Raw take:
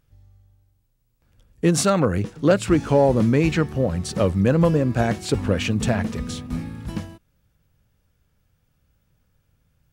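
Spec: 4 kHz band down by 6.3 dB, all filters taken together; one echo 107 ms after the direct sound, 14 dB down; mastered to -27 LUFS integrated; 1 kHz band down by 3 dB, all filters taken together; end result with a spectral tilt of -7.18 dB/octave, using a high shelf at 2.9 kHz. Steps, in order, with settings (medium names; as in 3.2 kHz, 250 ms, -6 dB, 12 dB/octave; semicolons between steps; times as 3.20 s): peaking EQ 1 kHz -3.5 dB; treble shelf 2.9 kHz -4 dB; peaking EQ 4 kHz -5 dB; delay 107 ms -14 dB; trim -5.5 dB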